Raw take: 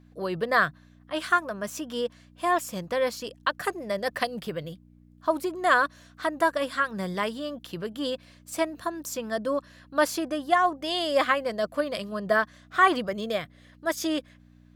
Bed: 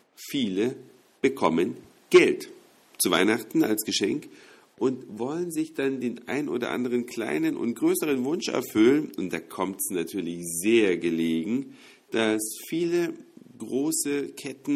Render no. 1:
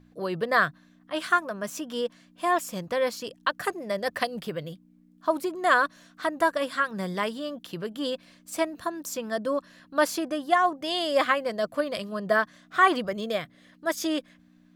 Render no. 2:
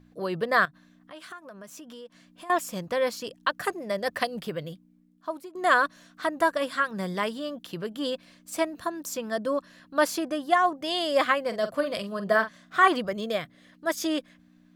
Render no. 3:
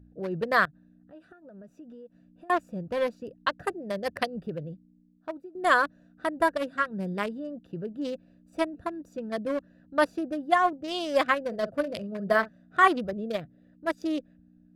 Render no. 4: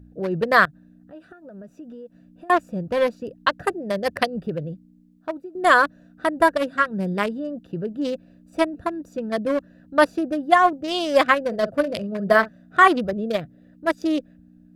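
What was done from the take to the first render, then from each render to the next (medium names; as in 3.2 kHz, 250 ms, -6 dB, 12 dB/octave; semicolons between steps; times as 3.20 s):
de-hum 60 Hz, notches 2
0.65–2.50 s: compression 4:1, threshold -43 dBFS; 4.69–5.55 s: fade out, to -17.5 dB; 11.47–12.88 s: doubling 45 ms -11 dB
local Wiener filter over 41 samples; peaking EQ 65 Hz +7 dB 1.3 oct
trim +7 dB; peak limiter -3 dBFS, peak gain reduction 2.5 dB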